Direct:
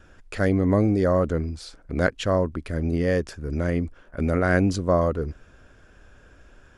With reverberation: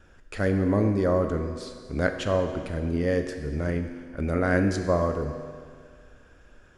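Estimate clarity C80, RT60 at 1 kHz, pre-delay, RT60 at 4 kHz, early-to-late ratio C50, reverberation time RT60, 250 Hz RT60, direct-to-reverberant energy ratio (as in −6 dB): 8.0 dB, 2.0 s, 8 ms, 1.9 s, 7.0 dB, 2.0 s, 2.0 s, 5.5 dB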